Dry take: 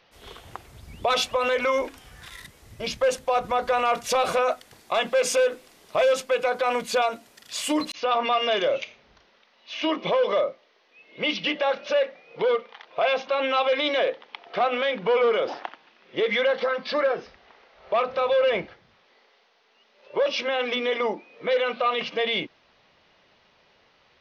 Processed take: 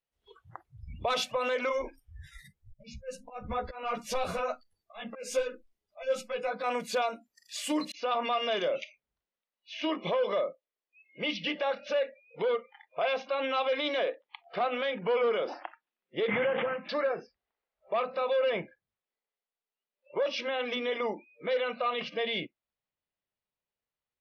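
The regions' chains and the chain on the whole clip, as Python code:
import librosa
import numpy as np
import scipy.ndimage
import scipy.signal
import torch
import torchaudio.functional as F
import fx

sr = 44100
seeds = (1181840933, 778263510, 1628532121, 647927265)

y = fx.chain(x, sr, fx.auto_swell(attack_ms=214.0),
    fx.low_shelf(hz=180.0, db=9.0),
    fx.ensemble(), at=(1.69, 6.64))
y = fx.chain(y, sr, fx.cvsd(bps=16000),
    fx.highpass(hz=72.0, slope=12),
    fx.pre_swell(db_per_s=25.0), at=(16.28, 16.89))
y = fx.noise_reduce_blind(y, sr, reduce_db=29)
y = fx.low_shelf(y, sr, hz=130.0, db=10.5)
y = F.gain(torch.from_numpy(y), -7.0).numpy()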